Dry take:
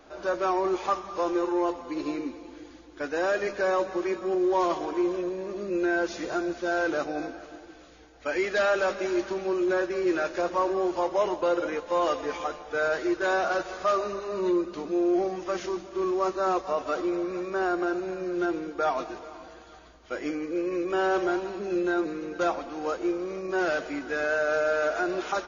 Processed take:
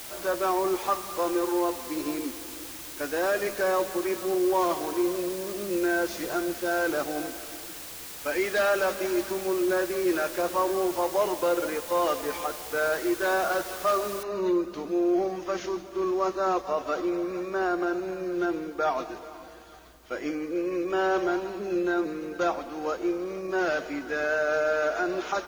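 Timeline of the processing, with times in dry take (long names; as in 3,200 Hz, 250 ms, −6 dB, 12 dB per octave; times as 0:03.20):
0:14.23: noise floor change −41 dB −63 dB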